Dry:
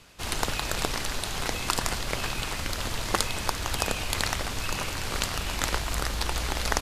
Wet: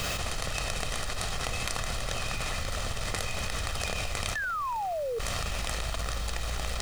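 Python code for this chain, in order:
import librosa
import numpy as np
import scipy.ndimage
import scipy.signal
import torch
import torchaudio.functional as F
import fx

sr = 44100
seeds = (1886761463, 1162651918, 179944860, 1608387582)

y = fx.self_delay(x, sr, depth_ms=0.8)
y = fx.doppler_pass(y, sr, speed_mps=8, closest_m=5.2, pass_at_s=1.57)
y = scipy.signal.sosfilt(scipy.signal.butter(4, 10000.0, 'lowpass', fs=sr, output='sos'), y)
y = y + 0.5 * np.pad(y, (int(1.6 * sr / 1000.0), 0))[:len(y)]
y = fx.spec_paint(y, sr, seeds[0], shape='fall', start_s=4.35, length_s=0.84, low_hz=440.0, high_hz=1800.0, level_db=-28.0)
y = fx.quant_companded(y, sr, bits=6)
y = fx.env_flatten(y, sr, amount_pct=100)
y = y * 10.0 ** (-6.5 / 20.0)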